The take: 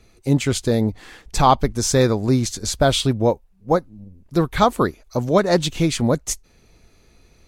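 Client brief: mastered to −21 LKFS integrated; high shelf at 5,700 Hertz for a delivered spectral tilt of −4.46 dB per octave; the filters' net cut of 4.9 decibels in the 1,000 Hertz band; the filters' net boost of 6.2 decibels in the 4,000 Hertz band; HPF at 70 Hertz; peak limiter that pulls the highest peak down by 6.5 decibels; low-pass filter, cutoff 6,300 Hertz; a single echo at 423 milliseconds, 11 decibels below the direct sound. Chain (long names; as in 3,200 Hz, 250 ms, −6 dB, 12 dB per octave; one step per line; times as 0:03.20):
high-pass filter 70 Hz
low-pass filter 6,300 Hz
parametric band 1,000 Hz −7 dB
parametric band 4,000 Hz +7 dB
high-shelf EQ 5,700 Hz +4 dB
brickwall limiter −9.5 dBFS
single-tap delay 423 ms −11 dB
level +0.5 dB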